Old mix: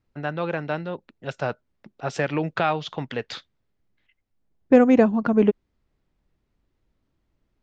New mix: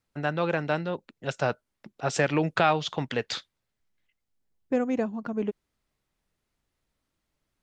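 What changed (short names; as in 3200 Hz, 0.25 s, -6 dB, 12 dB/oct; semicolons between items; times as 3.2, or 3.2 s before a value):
second voice -11.5 dB; master: remove air absorption 100 m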